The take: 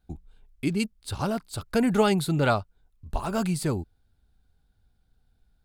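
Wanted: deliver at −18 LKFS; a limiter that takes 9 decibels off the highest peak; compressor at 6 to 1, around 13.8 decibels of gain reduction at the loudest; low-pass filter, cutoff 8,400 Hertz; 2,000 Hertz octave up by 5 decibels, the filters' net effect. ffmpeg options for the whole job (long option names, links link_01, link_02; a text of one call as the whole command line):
ffmpeg -i in.wav -af "lowpass=8400,equalizer=frequency=2000:width_type=o:gain=7.5,acompressor=threshold=-31dB:ratio=6,volume=21dB,alimiter=limit=-7dB:level=0:latency=1" out.wav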